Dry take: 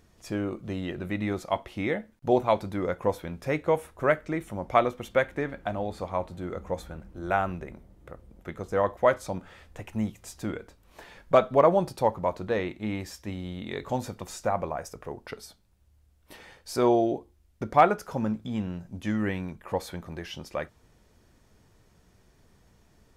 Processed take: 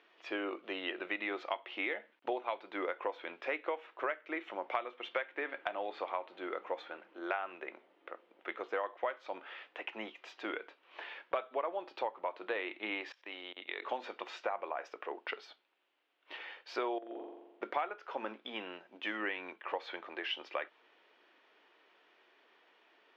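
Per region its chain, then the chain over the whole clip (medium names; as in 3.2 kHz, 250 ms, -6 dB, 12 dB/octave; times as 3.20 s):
13.12–13.82 s: bass shelf 250 Hz -10 dB + level held to a coarse grid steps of 21 dB
16.98–17.63 s: compression 5:1, threshold -37 dBFS + treble shelf 2.8 kHz -9 dB + flutter echo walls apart 7.4 m, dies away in 1.1 s
whole clip: elliptic band-pass 320–3000 Hz, stop band 50 dB; tilt EQ +4 dB/octave; compression 8:1, threshold -34 dBFS; trim +1.5 dB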